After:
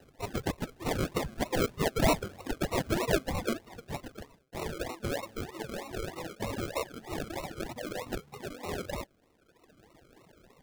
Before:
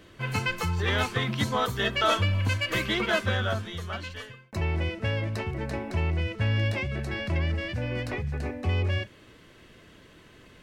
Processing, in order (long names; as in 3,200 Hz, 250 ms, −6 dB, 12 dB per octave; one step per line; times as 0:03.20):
high-pass filter 1,100 Hz 12 dB per octave, from 0:01.03 330 Hz
sample-and-hold swept by an LFO 38×, swing 60% 3.2 Hz
reverb reduction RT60 1.5 s